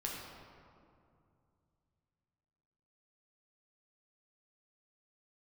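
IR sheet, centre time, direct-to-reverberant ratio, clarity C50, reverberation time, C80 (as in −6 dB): 102 ms, −3.0 dB, 0.5 dB, 2.5 s, 2.0 dB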